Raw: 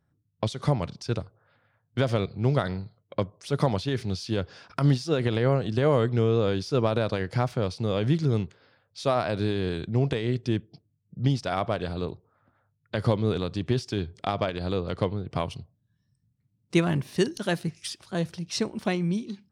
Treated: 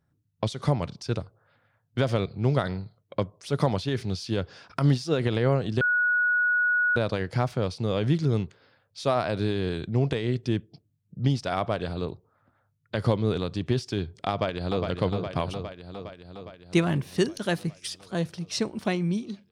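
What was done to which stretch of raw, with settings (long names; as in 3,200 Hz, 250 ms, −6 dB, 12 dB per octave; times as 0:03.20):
0:05.81–0:06.96: beep over 1,460 Hz −20 dBFS
0:14.30–0:14.87: delay throw 410 ms, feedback 70%, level −5.5 dB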